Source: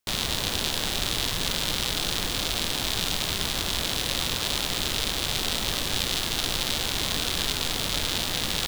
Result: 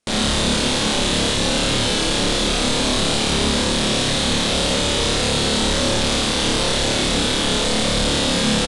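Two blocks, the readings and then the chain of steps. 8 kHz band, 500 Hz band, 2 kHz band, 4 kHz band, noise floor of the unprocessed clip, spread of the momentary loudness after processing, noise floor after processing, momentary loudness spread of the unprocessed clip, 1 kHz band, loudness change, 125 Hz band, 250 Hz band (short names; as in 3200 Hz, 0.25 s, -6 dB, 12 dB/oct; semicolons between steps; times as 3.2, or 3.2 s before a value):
+7.0 dB, +14.5 dB, +7.5 dB, +6.5 dB, -30 dBFS, 0 LU, -20 dBFS, 1 LU, +9.5 dB, +7.5 dB, +10.5 dB, +15.0 dB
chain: bell 520 Hz +7.5 dB 0.47 oct; flutter echo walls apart 4.8 m, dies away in 0.81 s; hard clip -21.5 dBFS, distortion -8 dB; downsampling 22050 Hz; bell 230 Hz +8.5 dB 0.8 oct; gain +6 dB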